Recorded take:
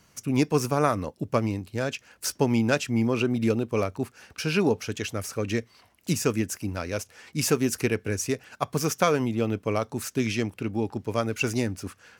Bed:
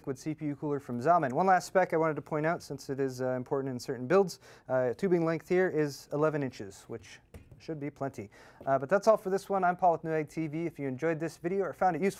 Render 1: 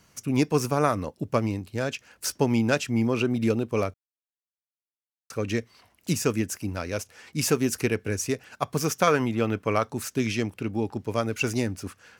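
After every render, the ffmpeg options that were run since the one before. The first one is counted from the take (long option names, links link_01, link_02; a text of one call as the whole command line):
ffmpeg -i in.wav -filter_complex "[0:a]asettb=1/sr,asplit=3[link_01][link_02][link_03];[link_01]atrim=end=9.074[link_04];[link_02]atrim=start=9.07:end=9.89,asetpts=PTS-STARTPTS,afade=type=in:duration=0.004:curve=qsin,afade=type=out:start_time=0.816:duration=0.004:curve=qsin,equalizer=frequency=1500:width_type=o:width=1.5:gain=7[link_05];[link_03]atrim=start=9.886[link_06];[link_04][link_05]acrossfade=duration=0.004:curve1=hsin:curve2=qsin[link_07];[link_07][link_06]acrossfade=duration=0.004:curve1=qsin:curve2=hsin,asplit=3[link_08][link_09][link_10];[link_08]atrim=end=3.94,asetpts=PTS-STARTPTS,afade=type=out:start_time=3.936:duration=0.004:curve=hsin[link_11];[link_09]atrim=start=3.94:end=5.3,asetpts=PTS-STARTPTS,volume=0[link_12];[link_10]atrim=start=5.3,asetpts=PTS-STARTPTS,afade=type=in:duration=0.004:curve=hsin[link_13];[link_11][link_12][link_13]concat=n=3:v=0:a=1" out.wav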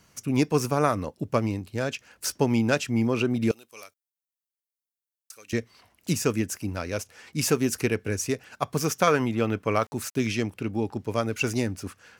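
ffmpeg -i in.wav -filter_complex "[0:a]asettb=1/sr,asplit=3[link_01][link_02][link_03];[link_01]atrim=end=3.514[link_04];[link_02]atrim=start=3.51:end=5.53,asetpts=PTS-STARTPTS,afade=type=in:duration=0.004:curve=qsin,afade=type=out:start_time=2.016:duration=0.004:curve=qsin,aderivative[link_05];[link_03]atrim=start=5.526[link_06];[link_04][link_05]acrossfade=duration=0.004:curve1=hsin:curve2=qsin[link_07];[link_07][link_06]acrossfade=duration=0.004:curve1=qsin:curve2=hsin,asettb=1/sr,asplit=3[link_08][link_09][link_10];[link_08]atrim=end=9.744[link_11];[link_09]atrim=start=9.74:end=10.28,asetpts=PTS-STARTPTS,afade=type=in:duration=0.004:curve=qsin,afade=type=out:start_time=0.536:duration=0.004:curve=qsin,aeval=exprs='val(0)*gte(abs(val(0)),0.00422)':channel_layout=same[link_12];[link_10]atrim=start=10.276[link_13];[link_11][link_12]acrossfade=duration=0.004:curve1=hsin:curve2=qsin[link_14];[link_14][link_13]acrossfade=duration=0.004:curve1=qsin:curve2=hsin" out.wav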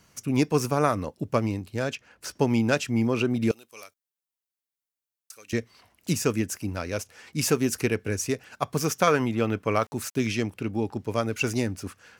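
ffmpeg -i in.wav -filter_complex "[0:a]asplit=3[link_01][link_02][link_03];[link_01]afade=type=out:start_time=1.94:duration=0.02[link_04];[link_02]highshelf=frequency=4600:gain=-12,afade=type=in:start_time=1.94:duration=0.02,afade=type=out:start_time=2.35:duration=0.02[link_05];[link_03]afade=type=in:start_time=2.35:duration=0.02[link_06];[link_04][link_05][link_06]amix=inputs=3:normalize=0" out.wav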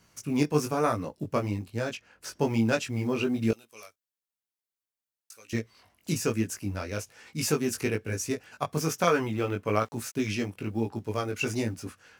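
ffmpeg -i in.wav -af "acrusher=bits=9:mode=log:mix=0:aa=0.000001,flanger=delay=17.5:depth=3.1:speed=1.1" out.wav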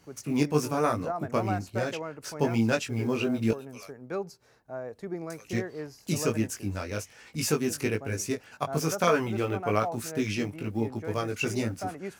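ffmpeg -i in.wav -i bed.wav -filter_complex "[1:a]volume=-8.5dB[link_01];[0:a][link_01]amix=inputs=2:normalize=0" out.wav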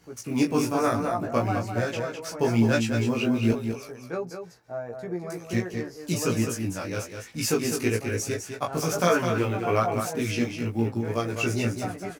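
ffmpeg -i in.wav -filter_complex "[0:a]asplit=2[link_01][link_02];[link_02]adelay=17,volume=-2dB[link_03];[link_01][link_03]amix=inputs=2:normalize=0,aecho=1:1:206:0.447" out.wav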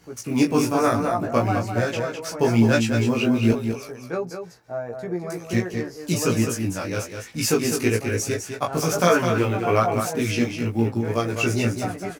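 ffmpeg -i in.wav -af "volume=4dB" out.wav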